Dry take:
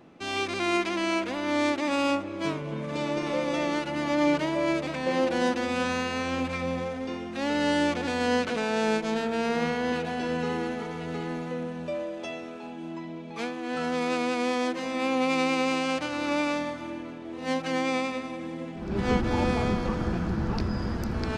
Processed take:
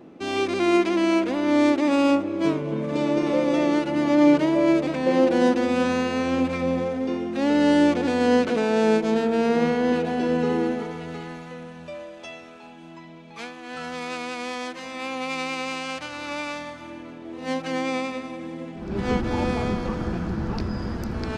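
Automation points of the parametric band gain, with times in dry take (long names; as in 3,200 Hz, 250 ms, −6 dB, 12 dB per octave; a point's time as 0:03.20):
parametric band 330 Hz 2 octaves
0:10.69 +9 dB
0:11.01 +1 dB
0:11.43 −8 dB
0:16.60 −8 dB
0:17.26 +1.5 dB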